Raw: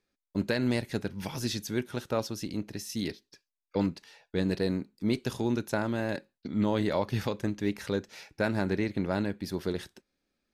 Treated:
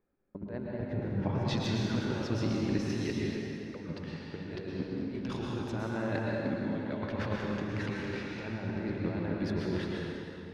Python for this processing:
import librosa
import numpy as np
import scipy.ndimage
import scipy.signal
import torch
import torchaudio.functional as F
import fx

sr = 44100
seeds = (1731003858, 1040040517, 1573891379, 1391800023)

y = fx.lowpass(x, sr, hz=fx.steps((0.0, 1100.0), (1.45, 2900.0)), slope=12)
y = fx.over_compress(y, sr, threshold_db=-34.0, ratio=-0.5)
y = fx.rev_plate(y, sr, seeds[0], rt60_s=3.2, hf_ratio=0.7, predelay_ms=100, drr_db=-3.5)
y = y * librosa.db_to_amplitude(-2.0)